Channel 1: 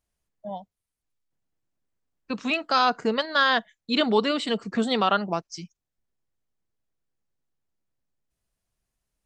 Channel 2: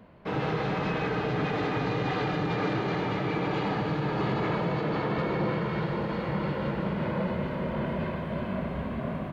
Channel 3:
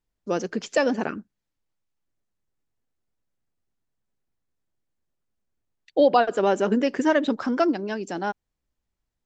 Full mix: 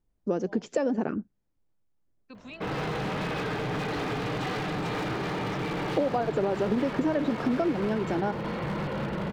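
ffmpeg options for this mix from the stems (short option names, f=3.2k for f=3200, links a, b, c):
-filter_complex "[0:a]alimiter=limit=-20dB:level=0:latency=1:release=438,volume=-14.5dB[a];[1:a]aeval=exprs='0.0531*(abs(mod(val(0)/0.0531+3,4)-2)-1)':c=same,adelay=2350,volume=0.5dB[b];[2:a]tiltshelf=f=1.1k:g=7.5,acompressor=threshold=-17dB:ratio=6,volume=0dB[c];[a][b][c]amix=inputs=3:normalize=0,acompressor=threshold=-27dB:ratio=2"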